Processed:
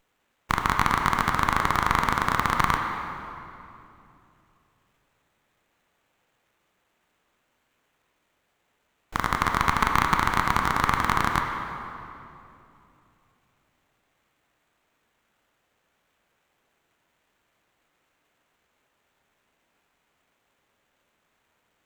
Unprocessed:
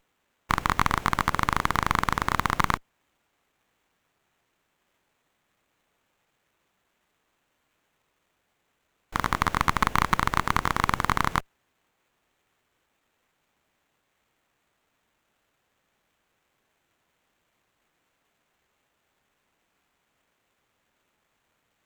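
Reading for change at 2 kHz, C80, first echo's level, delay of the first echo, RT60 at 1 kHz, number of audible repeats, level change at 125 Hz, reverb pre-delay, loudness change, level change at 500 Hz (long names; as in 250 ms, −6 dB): +2.0 dB, 4.0 dB, no echo audible, no echo audible, 2.6 s, no echo audible, +0.5 dB, 24 ms, +1.5 dB, +2.0 dB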